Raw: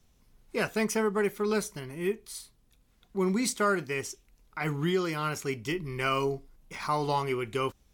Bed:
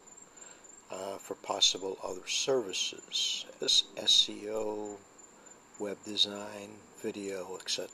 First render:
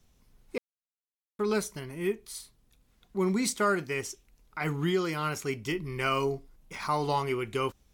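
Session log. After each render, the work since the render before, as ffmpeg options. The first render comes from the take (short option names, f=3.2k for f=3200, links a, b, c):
-filter_complex "[0:a]asplit=3[a][b][c];[a]atrim=end=0.58,asetpts=PTS-STARTPTS,afade=t=out:st=0.576:d=0.004:c=hsin[d];[b]atrim=start=0.58:end=1.39,asetpts=PTS-STARTPTS,volume=0[e];[c]atrim=start=1.39,asetpts=PTS-STARTPTS,afade=t=in:d=0.004:c=hsin[f];[d][e][f]concat=n=3:v=0:a=1"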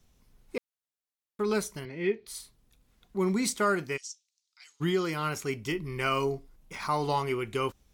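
-filter_complex "[0:a]asettb=1/sr,asplit=3[a][b][c];[a]atrim=end=1.854[d];[b]atrim=start=1.85:end=2.27,asetpts=PTS-STARTPTS,afade=t=in:d=0.004:c=qsin,afade=t=out:st=0.416:d=0.004:c=qsin,highpass=120,equalizer=f=480:t=q:w=4:g=6,equalizer=f=1.1k:t=q:w=4:g=-8,equalizer=f=2.1k:t=q:w=4:g=6,equalizer=f=4.3k:t=q:w=4:g=8,lowpass=f=4.6k:w=0.5412,lowpass=f=4.6k:w=1.3066[e];[c]atrim=start=2.266[f];[d][e]acrossfade=d=0.004:c1=hsin:c2=qsin[g];[g][f]acrossfade=d=0.004:c1=qsin:c2=hsin,asplit=3[h][i][j];[h]afade=t=out:st=3.96:d=0.02[k];[i]asuperpass=centerf=5500:order=4:qfactor=1.5,afade=t=in:st=3.96:d=0.02,afade=t=out:st=4.8:d=0.02[l];[j]afade=t=in:st=4.8:d=0.02[m];[k][l][m]amix=inputs=3:normalize=0"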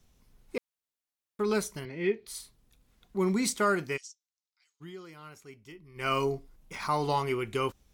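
-filter_complex "[0:a]asplit=3[a][b][c];[a]atrim=end=4.15,asetpts=PTS-STARTPTS,afade=t=out:st=3.98:d=0.17:silence=0.141254[d];[b]atrim=start=4.15:end=5.94,asetpts=PTS-STARTPTS,volume=-17dB[e];[c]atrim=start=5.94,asetpts=PTS-STARTPTS,afade=t=in:d=0.17:silence=0.141254[f];[d][e][f]concat=n=3:v=0:a=1"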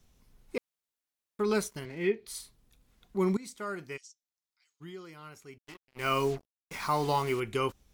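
-filter_complex "[0:a]asettb=1/sr,asplit=3[a][b][c];[a]atrim=end=1.614[d];[b]atrim=start=1.61:end=2.09,asetpts=PTS-STARTPTS,afade=t=in:d=0.004:c=qsin,afade=t=out:st=0.476:d=0.004:c=qsin,aeval=exprs='sgn(val(0))*max(abs(val(0))-0.00168,0)':c=same[e];[c]atrim=start=2.086[f];[d][e]acrossfade=d=0.004:c1=hsin:c2=qsin[g];[g][f]acrossfade=d=0.004:c1=qsin:c2=hsin,asettb=1/sr,asplit=3[h][i][j];[h]atrim=end=5.584[k];[i]atrim=start=5.58:end=7.4,asetpts=PTS-STARTPTS,afade=t=in:d=0.004:c=qsin,afade=t=out:st=1.816:d=0.004:c=qsin,acrusher=bits=6:mix=0:aa=0.5[l];[j]atrim=start=7.396[m];[k][l]acrossfade=d=0.004:c1=hsin:c2=qsin[n];[n][m]acrossfade=d=0.004:c1=qsin:c2=hsin,asplit=2[o][p];[o]atrim=end=3.37,asetpts=PTS-STARTPTS,afade=t=out:st=3.366:d=0.004:c=hsin:silence=0.105925[q];[p]atrim=start=3.37,asetpts=PTS-STARTPTS,afade=t=in:d=1.54:silence=0.105925[r];[q][r]concat=n=2:v=0:a=1"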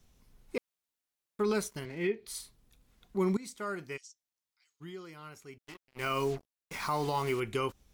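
-af "alimiter=limit=-21dB:level=0:latency=1:release=154"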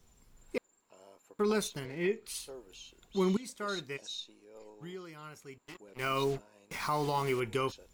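-filter_complex "[1:a]volume=-18dB[a];[0:a][a]amix=inputs=2:normalize=0"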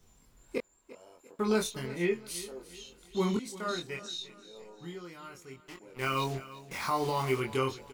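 -filter_complex "[0:a]asplit=2[a][b];[b]adelay=23,volume=-3dB[c];[a][c]amix=inputs=2:normalize=0,aecho=1:1:346|692|1038|1384:0.141|0.0593|0.0249|0.0105"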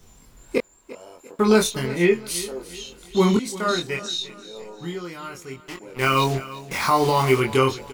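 -af "volume=11.5dB"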